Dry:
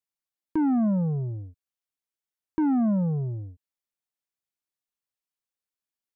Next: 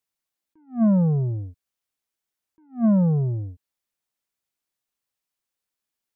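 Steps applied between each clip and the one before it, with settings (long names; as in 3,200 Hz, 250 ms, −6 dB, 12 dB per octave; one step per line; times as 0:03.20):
level that may rise only so fast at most 250 dB per second
level +6 dB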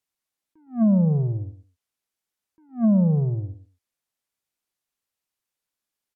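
repeating echo 111 ms, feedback 17%, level −12 dB
treble cut that deepens with the level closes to 730 Hz, closed at −15.5 dBFS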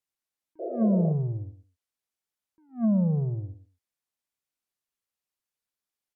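sound drawn into the spectrogram noise, 0:00.59–0:01.13, 330–710 Hz −28 dBFS
level −5 dB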